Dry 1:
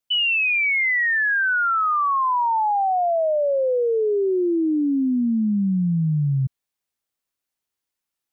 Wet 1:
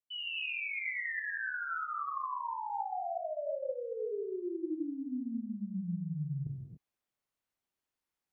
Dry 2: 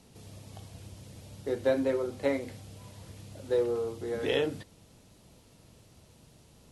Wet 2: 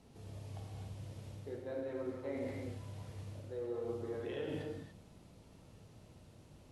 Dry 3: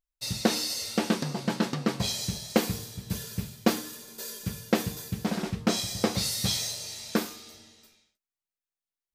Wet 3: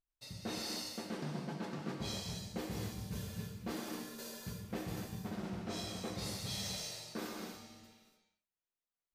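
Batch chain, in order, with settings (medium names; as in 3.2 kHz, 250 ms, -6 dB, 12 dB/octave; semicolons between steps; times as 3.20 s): treble shelf 3.1 kHz -9.5 dB; reverse; compression 10:1, threshold -36 dBFS; reverse; gated-style reverb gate 310 ms flat, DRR -1 dB; trim -4 dB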